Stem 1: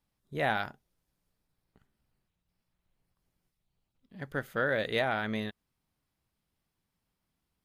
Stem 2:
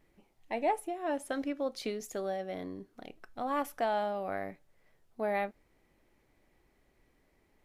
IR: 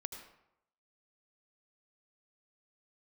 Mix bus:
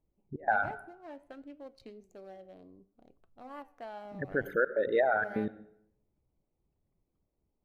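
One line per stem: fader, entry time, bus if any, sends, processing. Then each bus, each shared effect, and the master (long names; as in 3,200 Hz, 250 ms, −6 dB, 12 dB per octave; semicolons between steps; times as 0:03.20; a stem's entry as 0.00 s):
0.0 dB, 0.00 s, send −4 dB, spectral envelope exaggerated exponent 3; gate pattern "x.x.xxxxx.xxxx." 126 BPM −24 dB
−9.0 dB, 0.00 s, send −16.5 dB, adaptive Wiener filter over 25 samples; flanger 0.61 Hz, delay 5.9 ms, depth 8.8 ms, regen +83%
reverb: on, RT60 0.80 s, pre-delay 72 ms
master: notch filter 3,500 Hz, Q 17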